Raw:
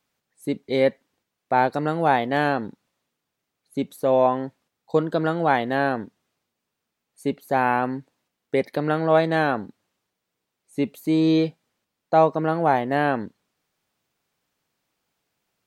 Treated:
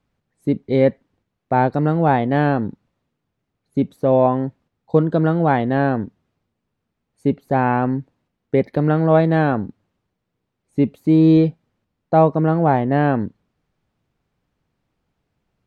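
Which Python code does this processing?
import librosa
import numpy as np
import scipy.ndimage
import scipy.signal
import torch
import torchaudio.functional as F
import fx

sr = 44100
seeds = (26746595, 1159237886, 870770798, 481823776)

y = fx.riaa(x, sr, side='playback')
y = y * 10.0 ** (1.0 / 20.0)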